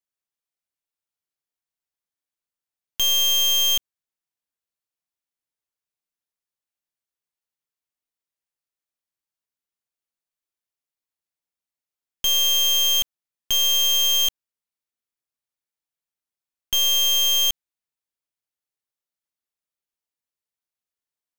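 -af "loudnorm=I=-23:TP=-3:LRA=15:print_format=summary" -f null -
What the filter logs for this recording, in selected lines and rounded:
Input Integrated:    -17.6 LUFS
Input True Peak:     -15.8 dBTP
Input LRA:             4.5 LU
Input Threshold:     -27.9 LUFS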